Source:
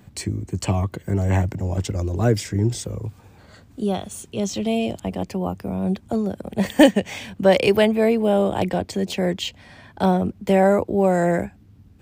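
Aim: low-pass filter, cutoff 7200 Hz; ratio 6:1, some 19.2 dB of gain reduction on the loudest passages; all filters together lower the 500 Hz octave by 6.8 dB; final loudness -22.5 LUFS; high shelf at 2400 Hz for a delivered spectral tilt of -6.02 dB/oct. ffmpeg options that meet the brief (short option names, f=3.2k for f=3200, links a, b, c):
-af "lowpass=7.2k,equalizer=f=500:t=o:g=-8.5,highshelf=f=2.4k:g=-5.5,acompressor=threshold=-32dB:ratio=6,volume=13.5dB"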